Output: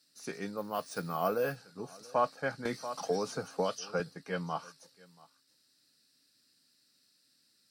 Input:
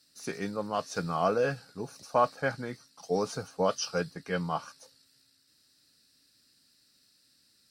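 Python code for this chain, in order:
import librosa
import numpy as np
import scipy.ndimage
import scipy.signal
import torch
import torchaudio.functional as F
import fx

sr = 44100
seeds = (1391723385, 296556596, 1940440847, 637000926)

y = scipy.signal.sosfilt(scipy.signal.butter(2, 130.0, 'highpass', fs=sr, output='sos'), x)
y = y + 10.0 ** (-23.5 / 20.0) * np.pad(y, (int(683 * sr / 1000.0), 0))[:len(y)]
y = fx.resample_bad(y, sr, factor=3, down='none', up='hold', at=(0.57, 1.56))
y = fx.band_squash(y, sr, depth_pct=100, at=(2.65, 4.0))
y = y * librosa.db_to_amplitude(-4.0)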